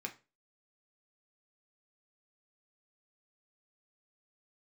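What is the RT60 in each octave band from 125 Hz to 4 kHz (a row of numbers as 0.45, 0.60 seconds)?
0.35, 0.35, 0.35, 0.25, 0.25, 0.25 seconds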